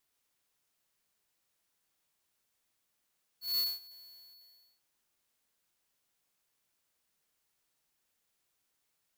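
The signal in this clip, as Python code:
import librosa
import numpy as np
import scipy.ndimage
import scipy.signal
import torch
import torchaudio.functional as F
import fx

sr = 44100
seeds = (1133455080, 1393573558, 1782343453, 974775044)

y = fx.adsr_tone(sr, wave='square', hz=4410.0, attack_ms=173.0, decay_ms=208.0, sustain_db=-24.0, held_s=0.59, release_ms=809.0, level_db=-29.5)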